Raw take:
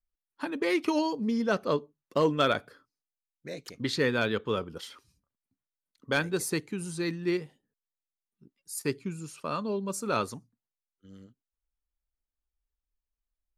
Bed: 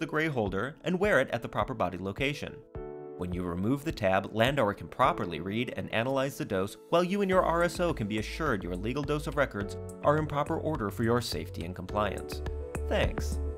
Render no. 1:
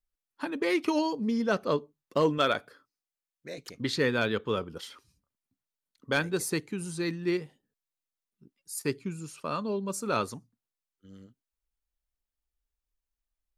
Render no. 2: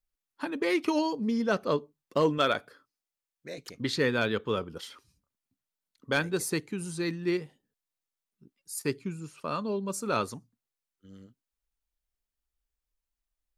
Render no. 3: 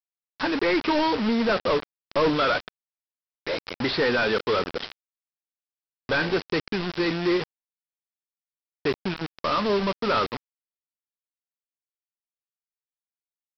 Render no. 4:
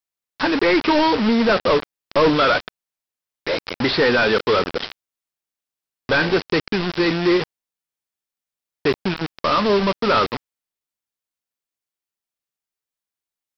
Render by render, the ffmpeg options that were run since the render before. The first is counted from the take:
-filter_complex "[0:a]asettb=1/sr,asplit=3[a][b][c];[a]atrim=end=2.384[d];[b]atrim=start=2.38:end=3.58,asetpts=PTS-STARTPTS,afade=t=in:d=0.004:c=qsin,afade=t=out:st=1.196:d=0.004:c=qsin,lowshelf=f=220:g=-7.5[e];[c]atrim=start=3.576[f];[d][e]acrossfade=d=0.004:c1=hsin:c2=qsin[g];[g][f]acrossfade=d=0.004:c1=qsin:c2=hsin"
-filter_complex "[0:a]asettb=1/sr,asplit=3[a][b][c];[a]atrim=end=9.024[d];[b]atrim=start=9.02:end=9.48,asetpts=PTS-STARTPTS,afade=t=in:d=0.004:c=qsin,afade=t=out:st=0.456:d=0.004:c=qsin,acrossover=split=2700[e][f];[f]acompressor=threshold=-53dB:ratio=4:attack=1:release=60[g];[e][g]amix=inputs=2:normalize=0[h];[c]atrim=start=9.476[i];[d][h]acrossfade=d=0.004:c1=hsin:c2=qsin[j];[j][i]acrossfade=d=0.004:c1=qsin:c2=hsin"
-filter_complex "[0:a]asplit=2[a][b];[b]highpass=f=720:p=1,volume=24dB,asoftclip=type=tanh:threshold=-14dB[c];[a][c]amix=inputs=2:normalize=0,lowpass=f=1.7k:p=1,volume=-6dB,aresample=11025,acrusher=bits=4:mix=0:aa=0.000001,aresample=44100"
-af "volume=6dB"

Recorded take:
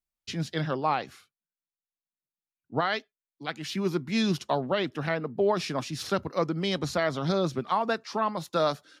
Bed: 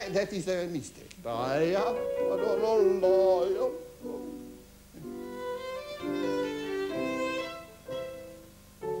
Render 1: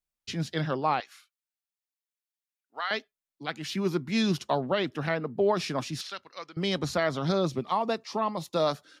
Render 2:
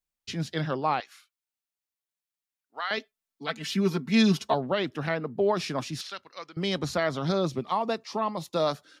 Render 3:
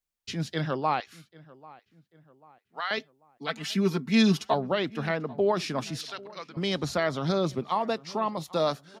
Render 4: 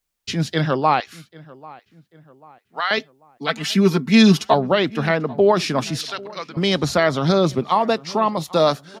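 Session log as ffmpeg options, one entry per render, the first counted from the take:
-filter_complex "[0:a]asettb=1/sr,asplit=3[a][b][c];[a]atrim=end=1.004[d];[b]atrim=start=1:end=2.91,asetpts=PTS-STARTPTS,afade=t=in:d=0.004:c=qsin,afade=t=out:st=1.906:d=0.004:c=qsin,highpass=1.3k[e];[c]atrim=start=2.906[f];[d][e]acrossfade=d=0.004:c1=hsin:c2=qsin[g];[g][f]acrossfade=d=0.004:c1=qsin:c2=hsin,asettb=1/sr,asplit=3[h][i][j];[h]atrim=end=6.014[k];[i]atrim=start=6.01:end=6.57,asetpts=PTS-STARTPTS,afade=t=in:d=0.004:c=qsin,afade=t=out:st=0.556:d=0.004:c=qsin,bandpass=f=3.4k:t=q:w=1.1[l];[j]atrim=start=6.566[m];[k][l]acrossfade=d=0.004:c1=hsin:c2=qsin[n];[n][m]acrossfade=d=0.004:c1=qsin:c2=hsin,asettb=1/sr,asplit=3[o][p][q];[o]atrim=end=7.464[r];[p]atrim=start=7.46:end=8.68,asetpts=PTS-STARTPTS,afade=t=in:d=0.004:c=qsin,afade=t=out:st=1.216:d=0.004:c=qsin,equalizer=f=1.5k:t=o:w=0.36:g=-11.5[s];[q]atrim=start=8.676[t];[r][s]acrossfade=d=0.004:c1=hsin:c2=qsin[u];[u][t]acrossfade=d=0.004:c1=qsin:c2=hsin"
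-filter_complex "[0:a]asettb=1/sr,asplit=3[a][b][c];[a]atrim=end=2.974[d];[b]atrim=start=2.97:end=4.54,asetpts=PTS-STARTPTS,afade=t=in:d=0.004:c=qsin,afade=t=out:st=1.566:d=0.004:c=qsin,aecho=1:1:4.5:0.9,atrim=end_sample=69237[e];[c]atrim=start=4.536[f];[d][e]acrossfade=d=0.004:c1=hsin:c2=qsin[g];[g][f]acrossfade=d=0.004:c1=qsin:c2=hsin"
-filter_complex "[0:a]asplit=2[a][b];[b]adelay=791,lowpass=f=2.2k:p=1,volume=-21.5dB,asplit=2[c][d];[d]adelay=791,lowpass=f=2.2k:p=1,volume=0.47,asplit=2[e][f];[f]adelay=791,lowpass=f=2.2k:p=1,volume=0.47[g];[a][c][e][g]amix=inputs=4:normalize=0"
-af "volume=9.5dB,alimiter=limit=-3dB:level=0:latency=1"

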